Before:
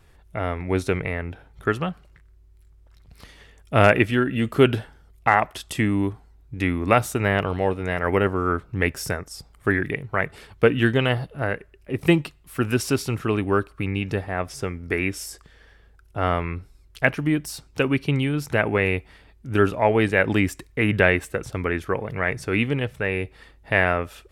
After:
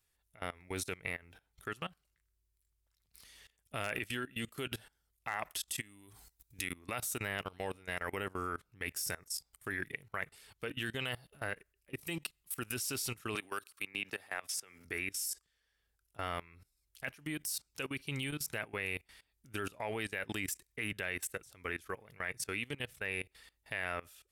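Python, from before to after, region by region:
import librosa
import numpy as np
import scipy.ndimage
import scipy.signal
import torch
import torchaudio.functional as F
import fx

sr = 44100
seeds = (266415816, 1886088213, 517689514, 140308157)

y = fx.chain(x, sr, fx.high_shelf(hz=3400.0, db=10.5),
    fx.over_compress(threshold_db=-26.0, ratio=-1.0), at=(5.8, 6.73))
y = fx.chain(y, sr, fx.highpass(hz=630.0, slope=6),
    fx.band_squash(depth_pct=100), at=(13.35, 14.85))
y = scipy.signal.lfilter([1.0, -0.9], [1.0], y)
y = fx.level_steps(y, sr, step_db=21)
y = F.gain(torch.from_numpy(y), 4.5).numpy()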